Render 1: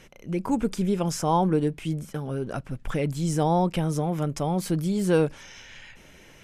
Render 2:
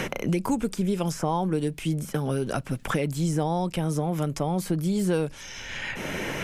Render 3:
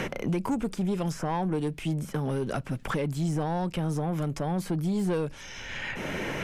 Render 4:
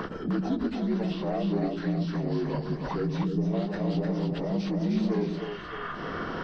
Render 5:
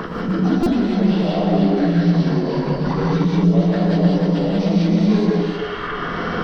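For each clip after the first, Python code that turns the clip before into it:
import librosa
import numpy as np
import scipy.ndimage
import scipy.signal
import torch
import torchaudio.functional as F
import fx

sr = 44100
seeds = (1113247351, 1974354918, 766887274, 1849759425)

y1 = fx.high_shelf(x, sr, hz=7600.0, db=5.0)
y1 = fx.band_squash(y1, sr, depth_pct=100)
y1 = F.gain(torch.from_numpy(y1), -1.5).numpy()
y2 = 10.0 ** (-21.5 / 20.0) * np.tanh(y1 / 10.0 ** (-21.5 / 20.0))
y2 = fx.high_shelf(y2, sr, hz=4700.0, db=-7.5)
y3 = fx.partial_stretch(y2, sr, pct=79)
y3 = fx.echo_split(y3, sr, split_hz=360.0, low_ms=105, high_ms=306, feedback_pct=52, wet_db=-4)
y3 = fx.spec_box(y3, sr, start_s=3.24, length_s=0.3, low_hz=490.0, high_hz=4900.0, gain_db=-10)
y4 = fx.rev_gated(y3, sr, seeds[0], gate_ms=220, shape='rising', drr_db=-3.5)
y4 = fx.buffer_glitch(y4, sr, at_s=(0.63,), block=128, repeats=10)
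y4 = F.gain(torch.from_numpy(y4), 6.0).numpy()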